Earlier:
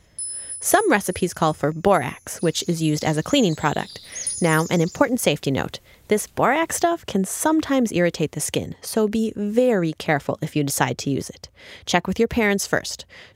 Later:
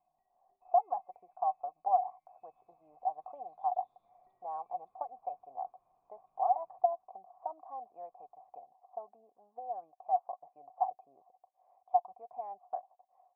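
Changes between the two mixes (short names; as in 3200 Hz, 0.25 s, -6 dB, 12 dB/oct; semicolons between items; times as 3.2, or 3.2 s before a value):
speech: add band-pass 760 Hz, Q 6.3; first sound: remove Chebyshev band-stop 160–4100 Hz, order 2; master: add vocal tract filter a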